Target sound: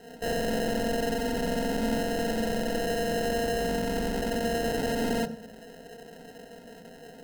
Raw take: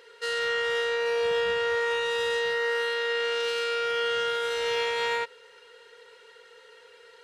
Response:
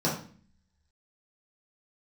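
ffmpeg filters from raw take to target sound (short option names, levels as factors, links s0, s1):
-filter_complex "[0:a]acrusher=samples=38:mix=1:aa=0.000001,aeval=exprs='0.0355*(abs(mod(val(0)/0.0355+3,4)-2)-1)':c=same,asplit=2[s0][s1];[1:a]atrim=start_sample=2205,adelay=23[s2];[s1][s2]afir=irnorm=-1:irlink=0,volume=0.0891[s3];[s0][s3]amix=inputs=2:normalize=0,volume=1.58"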